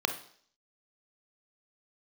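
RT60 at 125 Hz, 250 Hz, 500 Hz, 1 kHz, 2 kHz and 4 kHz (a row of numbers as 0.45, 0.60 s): 0.45, 0.55, 0.60, 0.55, 0.55, 0.65 s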